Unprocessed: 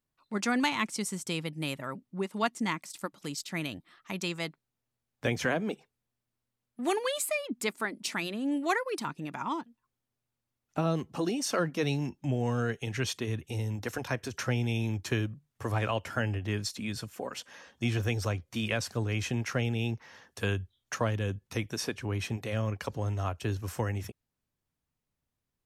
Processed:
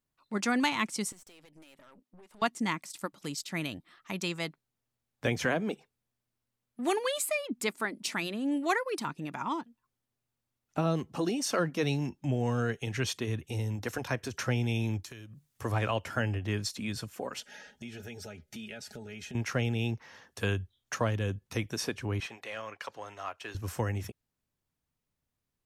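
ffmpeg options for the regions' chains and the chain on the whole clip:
ffmpeg -i in.wav -filter_complex "[0:a]asettb=1/sr,asplit=3[link_01][link_02][link_03];[link_01]atrim=end=1.124[link_04];[link_02]atrim=start=1.12:end=2.42,asetpts=PTS-STARTPTS,afade=type=in:duration=0.004:curve=qsin,afade=type=out:start_time=1.296:duration=0.004:curve=qsin,highpass=290,acompressor=threshold=-45dB:ratio=12:attack=3.2:release=140:knee=1:detection=peak,aeval=exprs='(tanh(355*val(0)+0.6)-tanh(0.6))/355':channel_layout=same[link_05];[link_03]atrim=start=2.416[link_06];[link_04][link_05]acrossfade=duration=0.004:curve1=hsin:curve2=qsin[link_07];[link_07][link_06]acrossfade=duration=0.004:curve1=qsin:curve2=hsin,asettb=1/sr,asplit=3[link_08][link_09][link_10];[link_08]atrim=end=15.044[link_11];[link_09]atrim=start=15.04:end=15.62,asetpts=PTS-STARTPTS,afade=type=in:duration=0.004:curve=qsin,afade=type=out:start_time=0.576:duration=0.004:curve=qsin,highshelf=frequency=3200:gain=11.5,acompressor=threshold=-44dB:ratio=6:attack=3.2:release=140:knee=1:detection=peak[link_12];[link_10]atrim=start=15.616[link_13];[link_11][link_12]acrossfade=duration=0.004:curve1=hsin:curve2=qsin[link_14];[link_14][link_13]acrossfade=duration=0.004:curve1=qsin:curve2=hsin,asettb=1/sr,asplit=3[link_15][link_16][link_17];[link_15]atrim=end=17.404[link_18];[link_16]atrim=start=17.4:end=19.35,asetpts=PTS-STARTPTS,afade=type=in:duration=0.004:curve=qsin,afade=type=out:start_time=1.946:duration=0.004:curve=qsin,asuperstop=centerf=1100:order=20:qfactor=3.8,aecho=1:1:4.8:0.66,atrim=end_sample=85995,acompressor=threshold=-42dB:ratio=4:attack=3.2:release=140:knee=1:detection=peak[link_19];[link_17]atrim=start=19.346[link_20];[link_18][link_19]acrossfade=duration=0.004:curve1=hsin:curve2=qsin[link_21];[link_21][link_20]acrossfade=duration=0.004:curve1=qsin:curve2=hsin,asettb=1/sr,asplit=3[link_22][link_23][link_24];[link_22]atrim=end=22.204[link_25];[link_23]atrim=start=22.2:end=23.55,asetpts=PTS-STARTPTS,afade=type=in:duration=0.004:curve=qsin,afade=type=out:start_time=1.346:duration=0.004:curve=qsin,highpass=frequency=1300:poles=1,asplit=2[link_26][link_27];[link_27]highpass=frequency=720:poles=1,volume=11dB,asoftclip=type=tanh:threshold=-24dB[link_28];[link_26][link_28]amix=inputs=2:normalize=0,lowpass=frequency=1900:poles=1,volume=-6dB[link_29];[link_24]atrim=start=23.546[link_30];[link_25][link_29]acrossfade=duration=0.004:curve1=hsin:curve2=qsin[link_31];[link_31][link_30]acrossfade=duration=0.004:curve1=qsin:curve2=hsin" out.wav

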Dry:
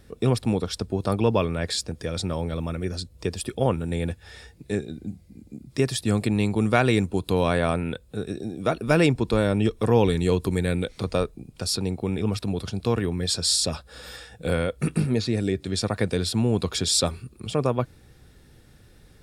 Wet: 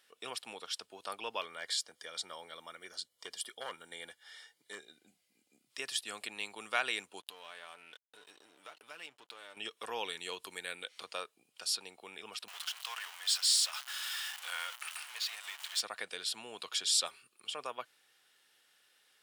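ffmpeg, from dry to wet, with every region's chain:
ffmpeg -i in.wav -filter_complex "[0:a]asettb=1/sr,asplit=3[link_01][link_02][link_03];[link_01]atrim=end=1.414[link_04];[link_02]atrim=start=1.41:end=4.93,asetpts=PTS-STARTPTS,afade=type=in:duration=0.004:curve=qsin,afade=type=out:start_time=3.516:duration=0.004:curve=qsin,asoftclip=type=hard:threshold=-17dB,asuperstop=centerf=2600:order=12:qfactor=6.7[link_05];[link_03]atrim=start=4.926[link_06];[link_04][link_05]acrossfade=duration=0.004:curve1=hsin:curve2=qsin[link_07];[link_07][link_06]acrossfade=duration=0.004:curve1=qsin:curve2=hsin,asettb=1/sr,asplit=3[link_08][link_09][link_10];[link_08]atrim=end=7.204[link_11];[link_09]atrim=start=7.2:end=9.57,asetpts=PTS-STARTPTS,afade=type=in:duration=0.004:curve=qsin,afade=type=out:start_time=2.366:duration=0.004:curve=qsin,aecho=1:1:6.8:0.4,atrim=end_sample=104517,acompressor=threshold=-34dB:ratio=3:attack=3.2:release=140:knee=1:detection=peak,aeval=exprs='sgn(val(0))*max(abs(val(0))-0.00398,0)':channel_layout=same[link_12];[link_10]atrim=start=9.566[link_13];[link_11][link_12]acrossfade=duration=0.004:curve1=hsin:curve2=qsin[link_14];[link_14][link_13]acrossfade=duration=0.004:curve1=qsin:curve2=hsin,asettb=1/sr,asplit=3[link_15][link_16][link_17];[link_15]atrim=end=12.484[link_18];[link_16]atrim=start=12.48:end=15.81,asetpts=PTS-STARTPTS,afade=type=in:duration=0.004:curve=qsin,afade=type=out:start_time=3.326:duration=0.004:curve=qsin,aeval=exprs='val(0)+0.5*0.0376*sgn(val(0))':channel_layout=same,highpass=frequency=820:width=0.5412,highpass=frequency=820:width=1.3066[link_19];[link_17]atrim=start=15.806[link_20];[link_18][link_19]acrossfade=duration=0.004:curve1=hsin:curve2=qsin[link_21];[link_21][link_20]acrossfade=duration=0.004:curve1=qsin:curve2=hsin,highpass=1100,equalizer=frequency=3000:width=7.6:gain=10,volume=-7dB" out.wav

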